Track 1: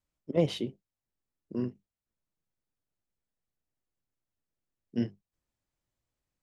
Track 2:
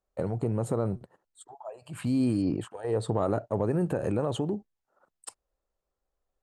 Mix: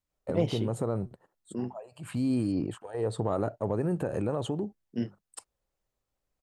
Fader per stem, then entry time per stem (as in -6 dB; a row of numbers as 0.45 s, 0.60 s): -1.5 dB, -2.0 dB; 0.00 s, 0.10 s